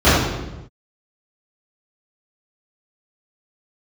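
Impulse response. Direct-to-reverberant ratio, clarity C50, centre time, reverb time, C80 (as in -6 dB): -17.0 dB, -1.5 dB, 83 ms, no single decay rate, 1.5 dB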